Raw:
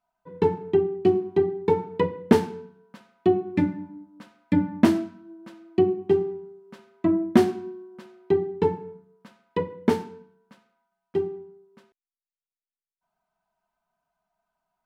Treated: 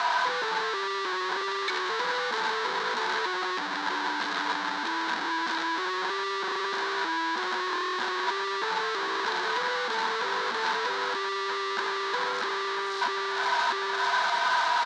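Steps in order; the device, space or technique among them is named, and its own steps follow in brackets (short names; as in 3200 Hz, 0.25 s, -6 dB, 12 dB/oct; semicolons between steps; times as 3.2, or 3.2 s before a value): 1.41–1.9 steep high-pass 1700 Hz 96 dB/oct; feedback echo 0.643 s, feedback 57%, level -23 dB; home computer beeper (infinite clipping; speaker cabinet 580–5400 Hz, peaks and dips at 620 Hz -8 dB, 1000 Hz +8 dB, 1600 Hz +9 dB, 2600 Hz -5 dB, 3900 Hz +7 dB)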